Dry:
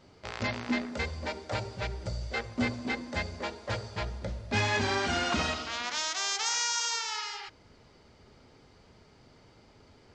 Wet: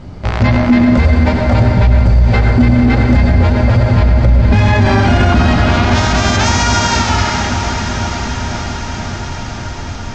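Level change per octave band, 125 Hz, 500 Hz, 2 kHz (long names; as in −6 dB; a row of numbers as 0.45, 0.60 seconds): +28.5, +19.0, +15.5 decibels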